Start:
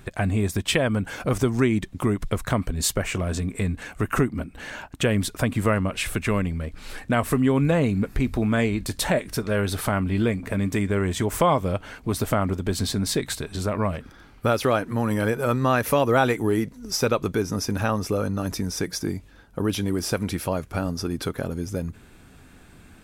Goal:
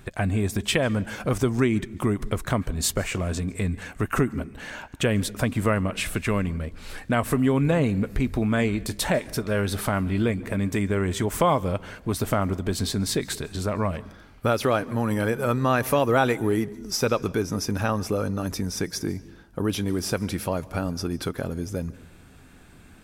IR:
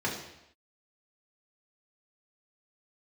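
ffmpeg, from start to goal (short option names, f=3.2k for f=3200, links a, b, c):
-filter_complex "[0:a]asplit=2[a][b];[1:a]atrim=start_sample=2205,highshelf=f=6.9k:g=10.5,adelay=140[c];[b][c]afir=irnorm=-1:irlink=0,volume=-30dB[d];[a][d]amix=inputs=2:normalize=0,volume=-1dB"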